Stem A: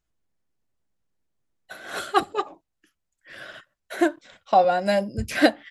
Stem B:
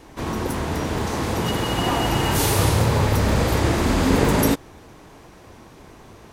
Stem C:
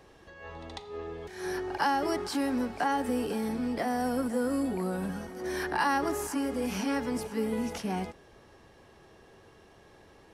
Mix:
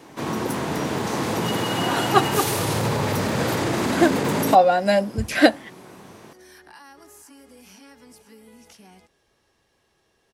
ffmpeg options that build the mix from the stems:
-filter_complex "[0:a]volume=3dB[a];[1:a]highpass=f=120:w=0.5412,highpass=f=120:w=1.3066,alimiter=limit=-14.5dB:level=0:latency=1:release=42,volume=0.5dB[b];[2:a]highshelf=f=2.2k:g=11.5,acompressor=threshold=-34dB:ratio=2.5,adelay=950,volume=-13.5dB[c];[a][b][c]amix=inputs=3:normalize=0"

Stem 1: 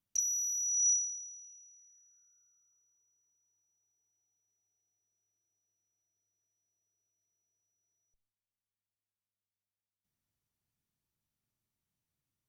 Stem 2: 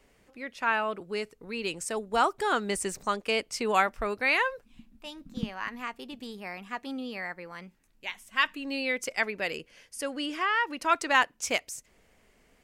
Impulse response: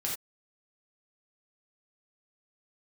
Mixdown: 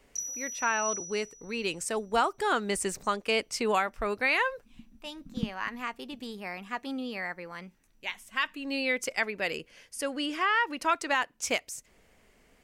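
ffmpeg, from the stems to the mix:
-filter_complex "[0:a]volume=-4dB,asplit=2[a][b];[b]volume=-13dB[c];[1:a]volume=1dB[d];[2:a]atrim=start_sample=2205[e];[c][e]afir=irnorm=-1:irlink=0[f];[a][d][f]amix=inputs=3:normalize=0,alimiter=limit=-15.5dB:level=0:latency=1:release=333"

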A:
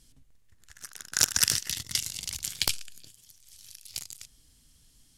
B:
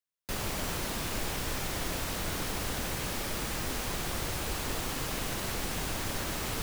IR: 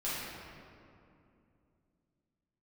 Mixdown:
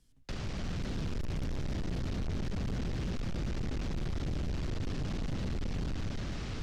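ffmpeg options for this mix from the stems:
-filter_complex "[0:a]highshelf=f=2.9k:g=-9.5,volume=-6dB[a];[1:a]lowpass=f=5.9k:w=0.5412,lowpass=f=5.9k:w=1.3066,equalizer=f=950:t=o:w=0.4:g=-4,dynaudnorm=f=180:g=9:m=10.5dB,volume=0.5dB[b];[a][b]amix=inputs=2:normalize=0,acrossover=split=250[c][d];[d]acompressor=threshold=-43dB:ratio=10[e];[c][e]amix=inputs=2:normalize=0,asoftclip=type=hard:threshold=-31.5dB"

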